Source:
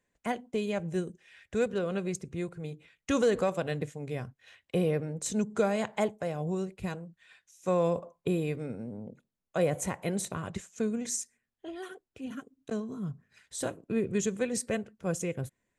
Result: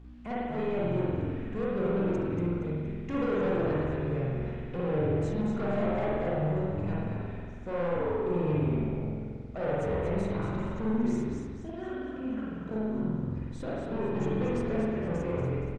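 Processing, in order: treble shelf 4.2 kHz -3.5 dB; de-hum 298.3 Hz, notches 38; frequency-shifting echo 235 ms, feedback 38%, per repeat -77 Hz, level -7.5 dB; hum 60 Hz, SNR 17 dB; saturation -31.5 dBFS, distortion -7 dB; spring tank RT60 1.7 s, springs 46 ms, chirp 70 ms, DRR -6.5 dB; word length cut 10-bit, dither none; tape spacing loss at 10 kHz 24 dB

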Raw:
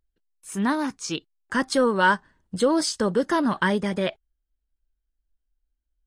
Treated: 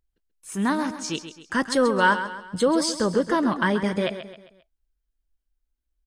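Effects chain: 3.12–3.84 s: treble shelf 4.5 kHz -5.5 dB; feedback delay 133 ms, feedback 43%, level -11 dB

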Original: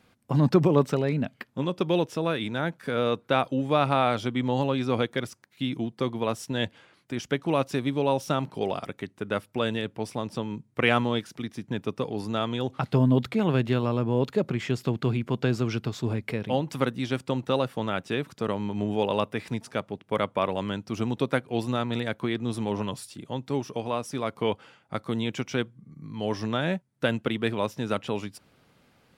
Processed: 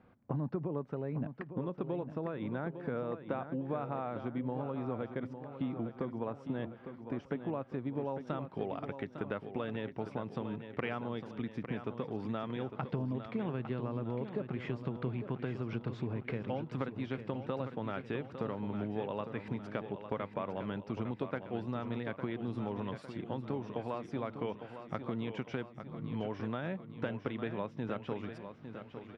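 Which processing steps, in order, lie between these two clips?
low-pass 1.3 kHz 12 dB/octave, from 8.27 s 2.2 kHz; compression 6:1, threshold -34 dBFS, peak gain reduction 18.5 dB; feedback delay 855 ms, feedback 52%, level -9.5 dB

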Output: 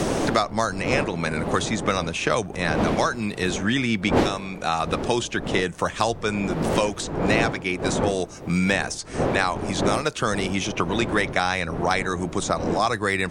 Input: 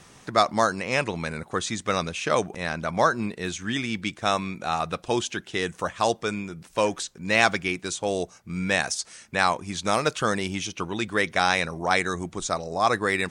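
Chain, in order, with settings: wind noise 460 Hz -28 dBFS; three bands compressed up and down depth 100%

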